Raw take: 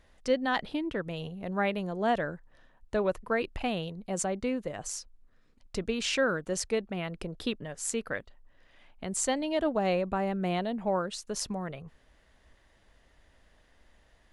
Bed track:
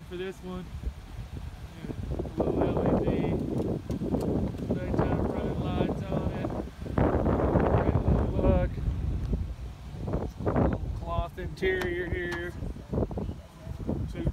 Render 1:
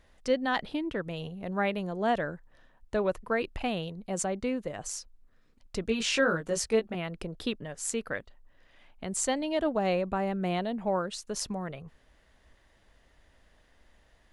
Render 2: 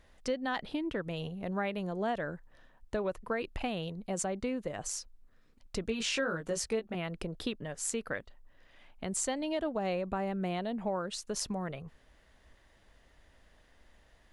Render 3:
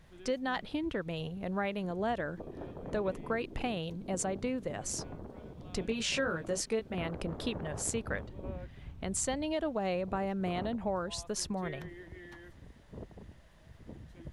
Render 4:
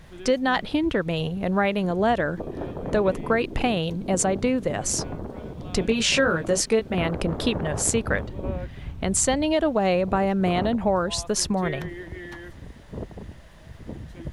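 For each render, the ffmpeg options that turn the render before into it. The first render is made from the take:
-filter_complex "[0:a]asettb=1/sr,asplit=3[a][b][c];[a]atrim=end=5.864[d];[b]atrim=start=5.86:end=6.95,asetpts=PTS-STARTPTS,afade=t=in:d=0.004:c=qsin,afade=t=out:st=1.086:d=0.004:c=qsin,asplit=2[e][f];[f]adelay=18,volume=-3dB[g];[e][g]amix=inputs=2:normalize=0,atrim=end_sample=48069[h];[c]atrim=start=6.946[i];[d][h]acrossfade=d=0.004:c1=hsin:c2=qsin[j];[j][i]acrossfade=d=0.004:c1=qsin:c2=hsin"
-af "acompressor=threshold=-31dB:ratio=3"
-filter_complex "[1:a]volume=-17.5dB[a];[0:a][a]amix=inputs=2:normalize=0"
-af "volume=11.5dB"

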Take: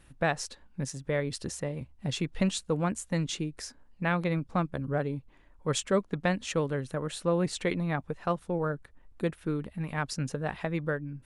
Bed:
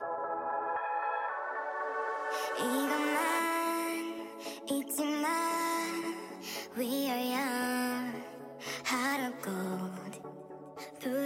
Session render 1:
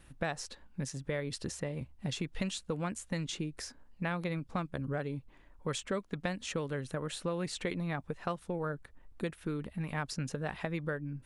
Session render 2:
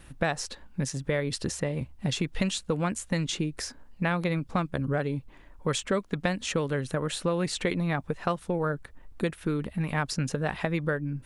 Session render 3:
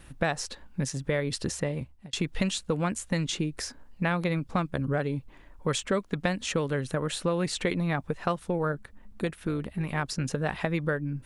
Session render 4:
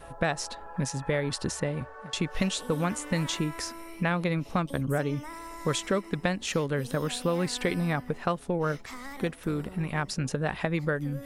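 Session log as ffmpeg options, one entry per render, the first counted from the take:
-filter_complex "[0:a]acrossover=split=1600|4500[a][b][c];[a]acompressor=threshold=-33dB:ratio=4[d];[b]acompressor=threshold=-42dB:ratio=4[e];[c]acompressor=threshold=-44dB:ratio=4[f];[d][e][f]amix=inputs=3:normalize=0"
-af "volume=7.5dB"
-filter_complex "[0:a]asettb=1/sr,asplit=3[a][b][c];[a]atrim=end=8.724[d];[b]atrim=start=8.72:end=10.25,asetpts=PTS-STARTPTS,afade=t=in:d=0.004:c=qsin,afade=t=out:st=1.526:d=0.004:c=qsin,tremolo=f=210:d=0.333[e];[c]atrim=start=10.246[f];[d][e]acrossfade=d=0.004:c1=hsin:c2=qsin[g];[g][f]acrossfade=d=0.004:c1=qsin:c2=hsin,asplit=2[h][i];[h]atrim=end=2.13,asetpts=PTS-STARTPTS,afade=t=out:st=1.7:d=0.43[j];[i]atrim=start=2.13,asetpts=PTS-STARTPTS,afade=t=in:d=0.004:c=hsin[k];[j][k]concat=n=2:v=0:a=1"
-filter_complex "[1:a]volume=-10.5dB[a];[0:a][a]amix=inputs=2:normalize=0"

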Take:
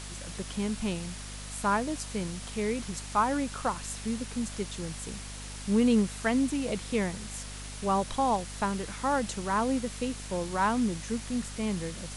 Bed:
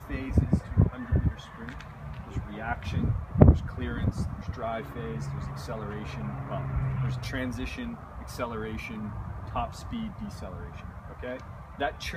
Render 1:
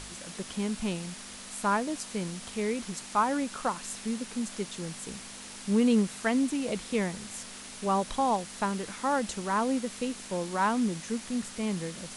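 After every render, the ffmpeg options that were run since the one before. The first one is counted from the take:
-af "bandreject=f=50:t=h:w=4,bandreject=f=100:t=h:w=4,bandreject=f=150:t=h:w=4"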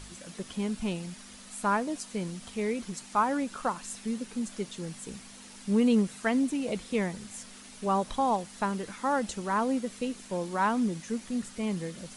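-af "afftdn=nr=7:nf=-44"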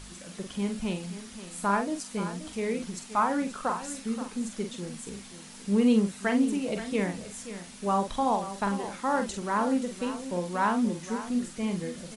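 -filter_complex "[0:a]asplit=2[a][b];[b]adelay=45,volume=-6.5dB[c];[a][c]amix=inputs=2:normalize=0,aecho=1:1:528:0.237"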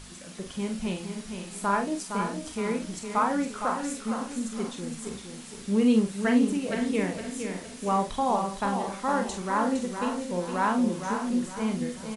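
-filter_complex "[0:a]asplit=2[a][b];[b]adelay=32,volume=-10.5dB[c];[a][c]amix=inputs=2:normalize=0,aecho=1:1:462|924|1386|1848:0.447|0.147|0.0486|0.0161"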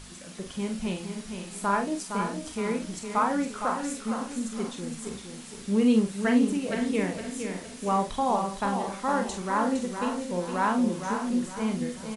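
-af anull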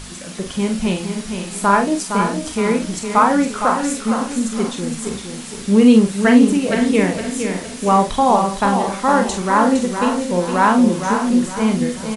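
-af "volume=11.5dB,alimiter=limit=-1dB:level=0:latency=1"

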